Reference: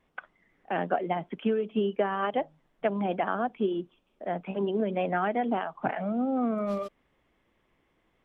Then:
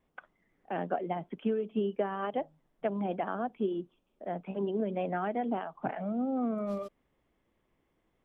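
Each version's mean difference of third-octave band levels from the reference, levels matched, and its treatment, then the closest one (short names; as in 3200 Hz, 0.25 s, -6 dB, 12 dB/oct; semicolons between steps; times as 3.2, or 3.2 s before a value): 1.0 dB: bell 2300 Hz -5.5 dB 2.6 oct; gain -3 dB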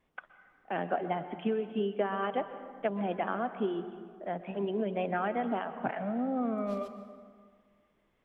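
2.5 dB: plate-style reverb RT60 1.8 s, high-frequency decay 0.55×, pre-delay 0.11 s, DRR 10.5 dB; gain -4 dB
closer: first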